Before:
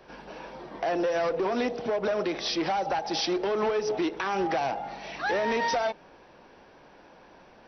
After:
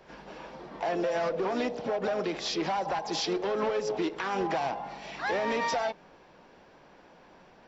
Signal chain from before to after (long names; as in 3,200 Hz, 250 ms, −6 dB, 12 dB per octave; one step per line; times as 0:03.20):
parametric band 170 Hz +4.5 dB 0.35 octaves
pitch-shifted copies added +4 semitones −9 dB
level −3 dB